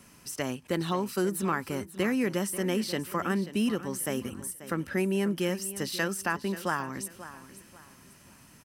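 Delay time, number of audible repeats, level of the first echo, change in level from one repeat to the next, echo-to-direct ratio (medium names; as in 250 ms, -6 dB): 537 ms, 3, -14.5 dB, -10.0 dB, -14.0 dB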